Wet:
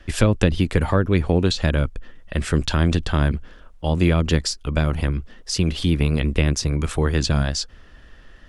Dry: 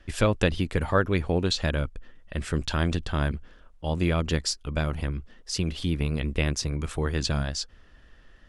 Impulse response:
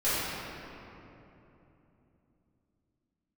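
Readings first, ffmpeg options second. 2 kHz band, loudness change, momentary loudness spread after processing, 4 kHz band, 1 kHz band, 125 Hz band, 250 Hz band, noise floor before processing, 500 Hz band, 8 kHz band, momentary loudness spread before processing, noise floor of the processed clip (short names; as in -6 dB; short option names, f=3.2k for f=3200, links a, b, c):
+3.5 dB, +6.5 dB, 9 LU, +4.5 dB, +3.5 dB, +7.5 dB, +7.0 dB, -55 dBFS, +4.5 dB, +5.0 dB, 9 LU, -47 dBFS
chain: -filter_complex "[0:a]acrossover=split=380[a][b];[b]acompressor=threshold=-29dB:ratio=6[c];[a][c]amix=inputs=2:normalize=0,volume=7.5dB"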